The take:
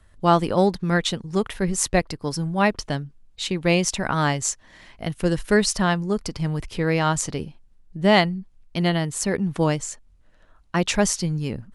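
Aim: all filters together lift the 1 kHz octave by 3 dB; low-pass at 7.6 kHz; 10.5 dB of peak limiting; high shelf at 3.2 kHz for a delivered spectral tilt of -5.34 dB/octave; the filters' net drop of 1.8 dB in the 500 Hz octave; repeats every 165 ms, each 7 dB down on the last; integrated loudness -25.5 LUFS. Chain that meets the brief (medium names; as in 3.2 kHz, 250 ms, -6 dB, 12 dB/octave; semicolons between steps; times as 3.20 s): low-pass 7.6 kHz; peaking EQ 500 Hz -4 dB; peaking EQ 1 kHz +6 dB; treble shelf 3.2 kHz -6.5 dB; peak limiter -13.5 dBFS; feedback delay 165 ms, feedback 45%, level -7 dB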